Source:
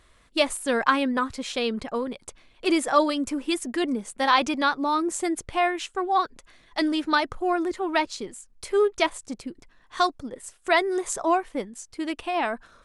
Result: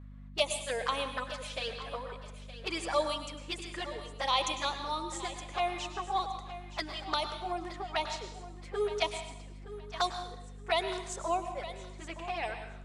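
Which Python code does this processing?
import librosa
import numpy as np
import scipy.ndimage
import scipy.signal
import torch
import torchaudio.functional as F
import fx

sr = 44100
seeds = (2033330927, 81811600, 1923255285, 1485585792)

y = scipy.signal.sosfilt(scipy.signal.butter(4, 440.0, 'highpass', fs=sr, output='sos'), x)
y = fx.env_lowpass(y, sr, base_hz=1900.0, full_db=-18.0)
y = fx.peak_eq(y, sr, hz=8500.0, db=10.0, octaves=1.5)
y = fx.env_flanger(y, sr, rest_ms=7.3, full_db=-20.5)
y = fx.add_hum(y, sr, base_hz=50, snr_db=11)
y = fx.echo_feedback(y, sr, ms=918, feedback_pct=23, wet_db=-14.0)
y = fx.rev_plate(y, sr, seeds[0], rt60_s=0.79, hf_ratio=0.95, predelay_ms=90, drr_db=7.5)
y = y * librosa.db_to_amplitude(-5.5)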